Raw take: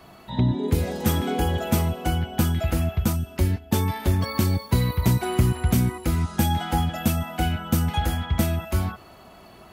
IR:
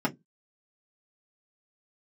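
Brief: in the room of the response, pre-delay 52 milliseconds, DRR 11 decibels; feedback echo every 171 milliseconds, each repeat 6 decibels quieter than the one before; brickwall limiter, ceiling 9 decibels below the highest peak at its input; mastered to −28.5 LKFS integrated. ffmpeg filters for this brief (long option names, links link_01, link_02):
-filter_complex "[0:a]alimiter=limit=-17dB:level=0:latency=1,aecho=1:1:171|342|513|684|855|1026:0.501|0.251|0.125|0.0626|0.0313|0.0157,asplit=2[link_01][link_02];[1:a]atrim=start_sample=2205,adelay=52[link_03];[link_02][link_03]afir=irnorm=-1:irlink=0,volume=-21dB[link_04];[link_01][link_04]amix=inputs=2:normalize=0,volume=-3dB"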